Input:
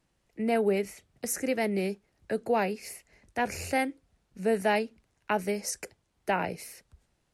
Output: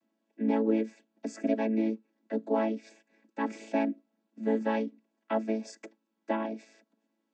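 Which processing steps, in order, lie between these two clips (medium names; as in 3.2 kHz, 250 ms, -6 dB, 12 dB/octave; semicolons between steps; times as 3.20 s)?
vocoder on a held chord major triad, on A3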